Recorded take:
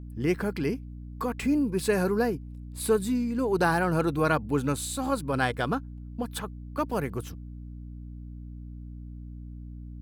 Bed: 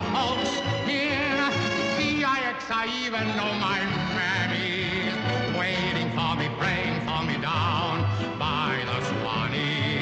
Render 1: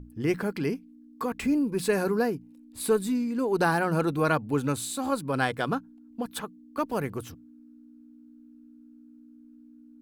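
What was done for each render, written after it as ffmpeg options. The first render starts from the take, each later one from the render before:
-af "bandreject=f=60:t=h:w=6,bandreject=f=120:t=h:w=6,bandreject=f=180:t=h:w=6"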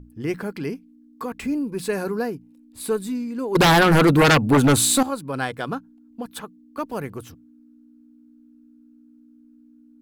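-filter_complex "[0:a]asettb=1/sr,asplit=3[s0][s1][s2];[s0]atrim=end=3.554[s3];[s1]atrim=start=3.55:end=5.03,asetpts=PTS-STARTPTS,afade=t=in:d=0.004:c=qsin,afade=t=out:st=1.476:d=0.004:c=qsin,aeval=exprs='0.299*sin(PI/2*3.98*val(0)/0.299)':c=same[s4];[s2]atrim=start=5.026[s5];[s3][s4]acrossfade=d=0.004:c1=hsin:c2=qsin[s6];[s6][s5]acrossfade=d=0.004:c1=qsin:c2=hsin"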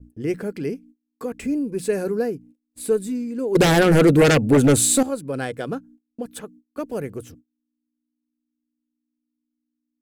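-af "agate=range=0.0355:threshold=0.00447:ratio=16:detection=peak,equalizer=f=500:t=o:w=1:g=6,equalizer=f=1000:t=o:w=1:g=-10,equalizer=f=4000:t=o:w=1:g=-5,equalizer=f=8000:t=o:w=1:g=5,equalizer=f=16000:t=o:w=1:g=-5"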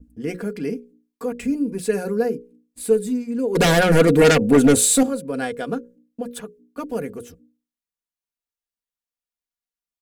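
-af "bandreject=f=60:t=h:w=6,bandreject=f=120:t=h:w=6,bandreject=f=180:t=h:w=6,bandreject=f=240:t=h:w=6,bandreject=f=300:t=h:w=6,bandreject=f=360:t=h:w=6,bandreject=f=420:t=h:w=6,bandreject=f=480:t=h:w=6,bandreject=f=540:t=h:w=6,aecho=1:1:4.2:0.61"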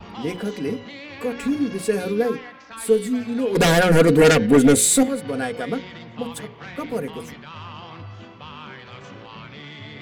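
-filter_complex "[1:a]volume=0.237[s0];[0:a][s0]amix=inputs=2:normalize=0"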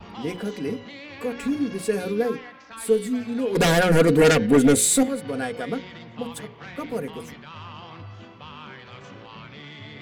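-af "volume=0.75"

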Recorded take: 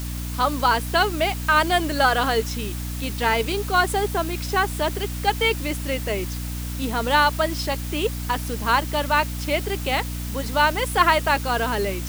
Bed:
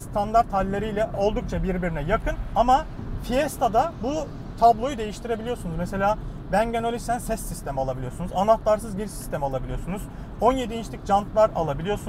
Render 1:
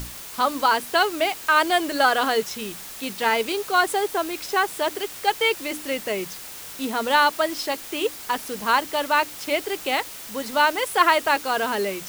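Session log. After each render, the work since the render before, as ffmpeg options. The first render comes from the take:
-af "bandreject=f=60:t=h:w=6,bandreject=f=120:t=h:w=6,bandreject=f=180:t=h:w=6,bandreject=f=240:t=h:w=6,bandreject=f=300:t=h:w=6"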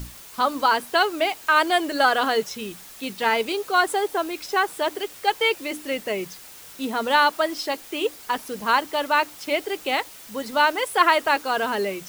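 -af "afftdn=nr=6:nf=-38"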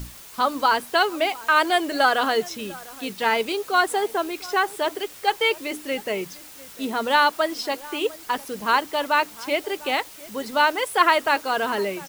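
-filter_complex "[0:a]asplit=2[s0][s1];[s1]adelay=699.7,volume=0.1,highshelf=f=4000:g=-15.7[s2];[s0][s2]amix=inputs=2:normalize=0"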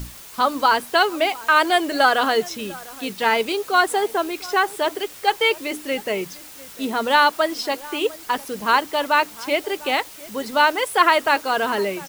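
-af "volume=1.33,alimiter=limit=0.708:level=0:latency=1"

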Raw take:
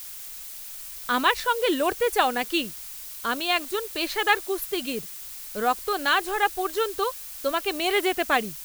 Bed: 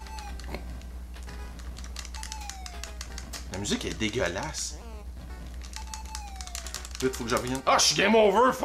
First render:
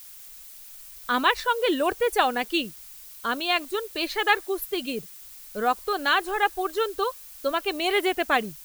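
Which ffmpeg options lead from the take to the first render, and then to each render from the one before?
-af "afftdn=nr=7:nf=-39"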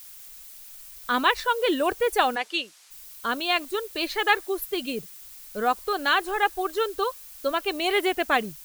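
-filter_complex "[0:a]asplit=3[s0][s1][s2];[s0]afade=t=out:st=2.35:d=0.02[s3];[s1]highpass=530,lowpass=7300,afade=t=in:st=2.35:d=0.02,afade=t=out:st=2.9:d=0.02[s4];[s2]afade=t=in:st=2.9:d=0.02[s5];[s3][s4][s5]amix=inputs=3:normalize=0"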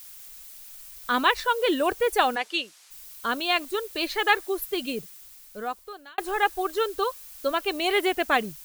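-filter_complex "[0:a]asplit=2[s0][s1];[s0]atrim=end=6.18,asetpts=PTS-STARTPTS,afade=t=out:st=4.9:d=1.28[s2];[s1]atrim=start=6.18,asetpts=PTS-STARTPTS,afade=t=in:d=0.004:c=hsin[s3];[s2][s3]concat=n=2:v=0:a=1"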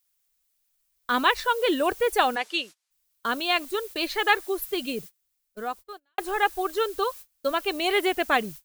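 -af "agate=range=0.0398:threshold=0.0112:ratio=16:detection=peak"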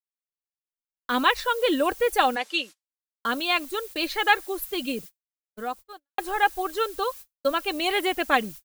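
-af "aecho=1:1:3.7:0.36,agate=range=0.0224:threshold=0.01:ratio=3:detection=peak"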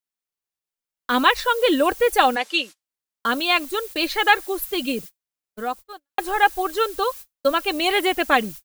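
-af "volume=1.68,alimiter=limit=0.708:level=0:latency=1"

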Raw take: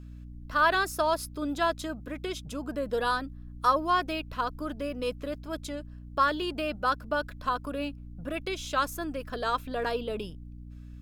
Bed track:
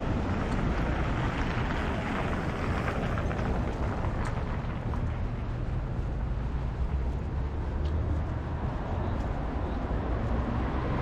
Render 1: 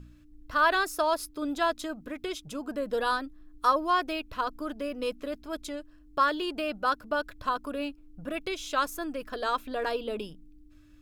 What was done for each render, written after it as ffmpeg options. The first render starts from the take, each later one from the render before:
-af "bandreject=f=60:t=h:w=4,bandreject=f=120:t=h:w=4,bandreject=f=180:t=h:w=4,bandreject=f=240:t=h:w=4"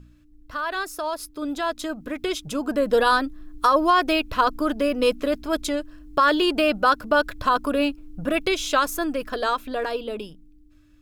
-af "alimiter=limit=0.1:level=0:latency=1:release=82,dynaudnorm=f=480:g=9:m=3.76"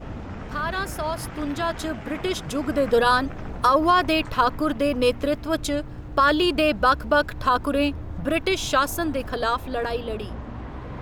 -filter_complex "[1:a]volume=0.531[s0];[0:a][s0]amix=inputs=2:normalize=0"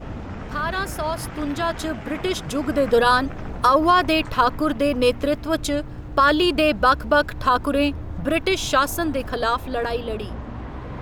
-af "volume=1.26"

